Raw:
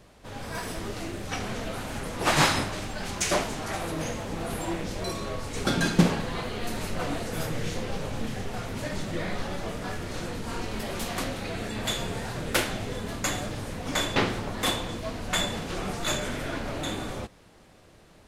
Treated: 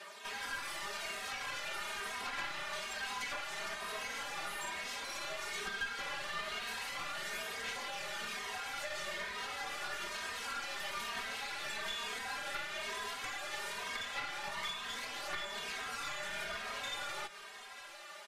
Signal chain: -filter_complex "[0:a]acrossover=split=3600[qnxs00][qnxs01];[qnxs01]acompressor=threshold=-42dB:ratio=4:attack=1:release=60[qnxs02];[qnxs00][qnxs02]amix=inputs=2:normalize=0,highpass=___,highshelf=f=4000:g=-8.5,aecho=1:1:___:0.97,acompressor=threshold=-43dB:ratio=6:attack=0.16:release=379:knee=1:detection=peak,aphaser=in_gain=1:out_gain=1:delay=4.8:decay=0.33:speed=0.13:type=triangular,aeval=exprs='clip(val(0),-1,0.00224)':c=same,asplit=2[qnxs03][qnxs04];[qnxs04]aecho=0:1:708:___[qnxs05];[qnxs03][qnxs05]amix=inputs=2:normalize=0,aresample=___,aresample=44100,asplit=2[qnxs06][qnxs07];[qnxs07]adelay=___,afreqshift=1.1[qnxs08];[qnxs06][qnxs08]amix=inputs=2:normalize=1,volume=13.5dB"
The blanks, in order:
1300, 5, 0.133, 32000, 2.9